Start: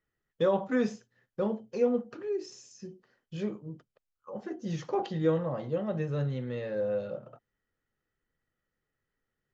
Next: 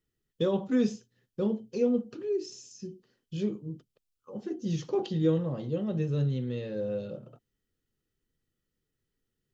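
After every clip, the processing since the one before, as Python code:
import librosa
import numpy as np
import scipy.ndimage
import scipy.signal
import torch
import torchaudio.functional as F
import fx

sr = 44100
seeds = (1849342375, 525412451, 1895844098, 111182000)

y = fx.band_shelf(x, sr, hz=1100.0, db=-10.5, octaves=2.3)
y = y * librosa.db_to_amplitude(3.5)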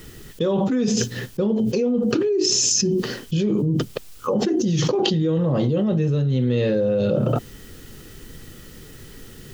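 y = fx.env_flatten(x, sr, amount_pct=100)
y = y * librosa.db_to_amplitude(1.5)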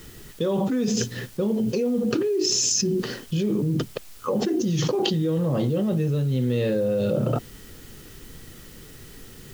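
y = fx.dmg_noise_colour(x, sr, seeds[0], colour='white', level_db=-50.0)
y = y * librosa.db_to_amplitude(-3.0)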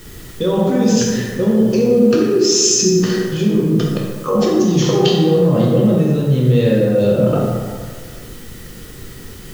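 y = fx.rev_plate(x, sr, seeds[1], rt60_s=1.7, hf_ratio=0.5, predelay_ms=0, drr_db=-3.5)
y = y * librosa.db_to_amplitude(4.0)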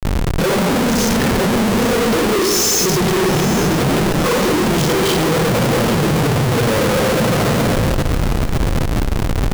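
y = fx.phase_scramble(x, sr, seeds[2], window_ms=50)
y = fx.schmitt(y, sr, flips_db=-29.0)
y = fx.echo_feedback(y, sr, ms=823, feedback_pct=35, wet_db=-13.0)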